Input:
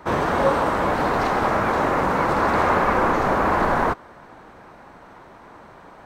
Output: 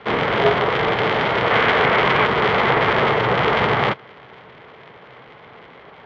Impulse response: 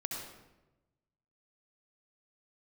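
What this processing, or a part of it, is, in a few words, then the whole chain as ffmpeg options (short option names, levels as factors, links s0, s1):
ring modulator pedal into a guitar cabinet: -filter_complex "[0:a]asettb=1/sr,asplit=3[s0][s1][s2];[s0]atrim=end=1.504[s3];[s1]atrim=start=1.5:end=2.26,asetpts=PTS-STARTPTS,afade=t=in:d=0.004:c=qsin,afade=t=out:st=0.756:d=0.004:c=qsin,equalizer=f=2000:w=0.62:g=5.5[s4];[s2]atrim=start=2.256[s5];[s3][s4]acrossfade=d=0.004:c1=hsin:c2=qsin[s6];[s6][s5]acrossfade=d=0.004:c1=qsin:c2=hsin,aeval=exprs='val(0)*sgn(sin(2*PI*130*n/s))':c=same,highpass=79,equalizer=f=84:t=q:w=4:g=-4,equalizer=f=130:t=q:w=4:g=7,equalizer=f=300:t=q:w=4:g=-4,equalizer=f=440:t=q:w=4:g=7,equalizer=f=2100:t=q:w=4:g=8,equalizer=f=3200:t=q:w=4:g=9,lowpass=f=4100:w=0.5412,lowpass=f=4100:w=1.3066"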